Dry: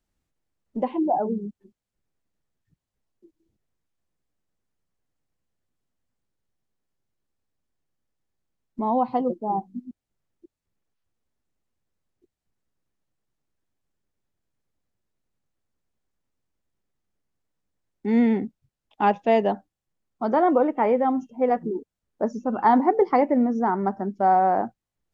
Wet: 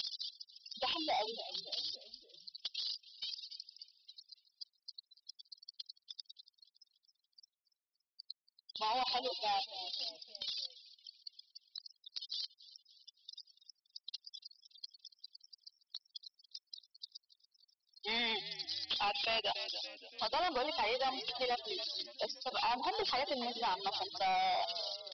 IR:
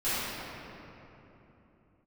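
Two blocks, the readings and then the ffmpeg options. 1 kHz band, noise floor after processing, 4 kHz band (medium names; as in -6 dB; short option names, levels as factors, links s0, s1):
-13.0 dB, under -85 dBFS, no reading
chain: -filter_complex "[0:a]aeval=exprs='val(0)+0.5*0.0168*sgn(val(0))':c=same,highpass=1100,aexciter=amount=9.7:drive=5.1:freq=2700,acompressor=threshold=0.0282:ratio=2.5,afftfilt=real='re*gte(hypot(re,im),0.0224)':imag='im*gte(hypot(re,im),0.0224)':win_size=1024:overlap=0.75,asplit=5[s0][s1][s2][s3][s4];[s1]adelay=284,afreqshift=-68,volume=0.119[s5];[s2]adelay=568,afreqshift=-136,volume=0.0582[s6];[s3]adelay=852,afreqshift=-204,volume=0.0285[s7];[s4]adelay=1136,afreqshift=-272,volume=0.014[s8];[s0][s5][s6][s7][s8]amix=inputs=5:normalize=0,aresample=11025,asoftclip=type=hard:threshold=0.0168,aresample=44100,volume=1.58"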